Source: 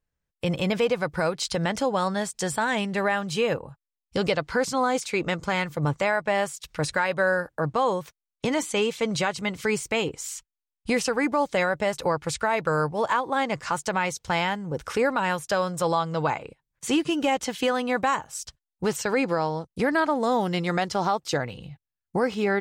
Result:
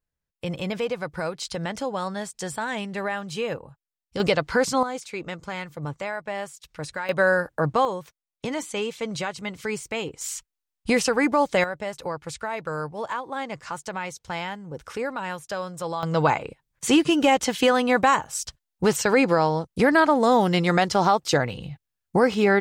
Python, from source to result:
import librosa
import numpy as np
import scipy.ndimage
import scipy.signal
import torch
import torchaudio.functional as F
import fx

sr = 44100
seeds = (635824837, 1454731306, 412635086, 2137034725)

y = fx.gain(x, sr, db=fx.steps((0.0, -4.0), (4.2, 3.0), (4.83, -7.0), (7.09, 3.0), (7.85, -4.0), (10.21, 3.0), (11.64, -6.0), (16.03, 5.0)))